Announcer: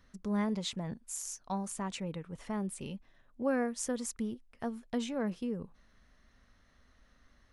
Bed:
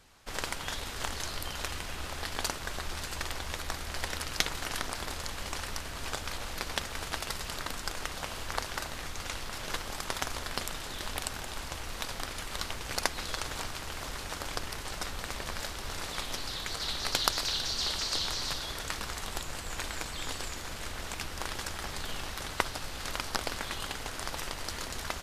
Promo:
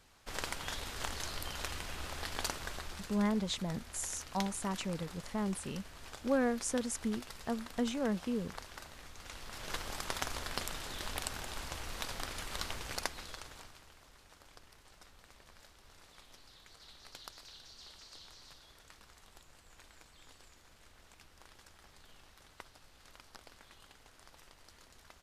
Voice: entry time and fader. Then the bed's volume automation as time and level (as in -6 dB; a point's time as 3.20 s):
2.85 s, +0.5 dB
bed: 2.62 s -4 dB
3.27 s -13 dB
9.17 s -13 dB
9.81 s -3.5 dB
12.79 s -3.5 dB
14.04 s -22 dB